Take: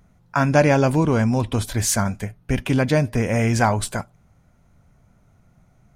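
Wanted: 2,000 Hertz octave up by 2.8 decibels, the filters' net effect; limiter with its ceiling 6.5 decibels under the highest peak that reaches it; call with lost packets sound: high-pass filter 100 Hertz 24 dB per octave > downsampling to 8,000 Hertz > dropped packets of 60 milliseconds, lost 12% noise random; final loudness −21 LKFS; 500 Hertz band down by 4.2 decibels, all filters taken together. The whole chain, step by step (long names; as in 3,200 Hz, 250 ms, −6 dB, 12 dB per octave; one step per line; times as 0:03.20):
parametric band 500 Hz −5.5 dB
parametric band 2,000 Hz +4 dB
brickwall limiter −11 dBFS
high-pass filter 100 Hz 24 dB per octave
downsampling to 8,000 Hz
dropped packets of 60 ms, lost 12% noise random
level +2.5 dB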